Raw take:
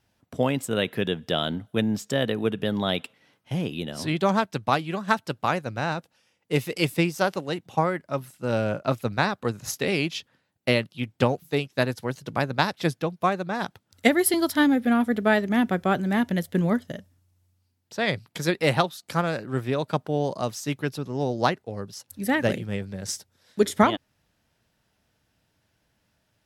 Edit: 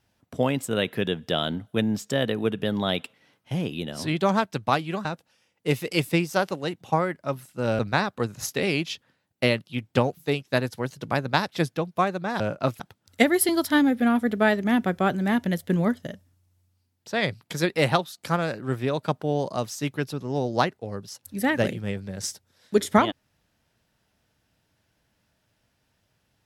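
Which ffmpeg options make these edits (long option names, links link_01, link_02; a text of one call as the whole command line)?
ffmpeg -i in.wav -filter_complex "[0:a]asplit=5[link_01][link_02][link_03][link_04][link_05];[link_01]atrim=end=5.052[link_06];[link_02]atrim=start=5.898:end=8.642[link_07];[link_03]atrim=start=9.038:end=13.652[link_08];[link_04]atrim=start=8.638:end=9.042[link_09];[link_05]atrim=start=13.648[link_10];[link_06][link_07]acrossfade=duration=0.004:curve1=hsin:curve2=hsin[link_11];[link_11][link_08]acrossfade=duration=0.004:curve1=hsin:curve2=hsin[link_12];[link_12][link_09]acrossfade=duration=0.004:curve1=hsin:curve2=hsin[link_13];[link_13][link_10]acrossfade=duration=0.004:curve1=hsin:curve2=hsin" out.wav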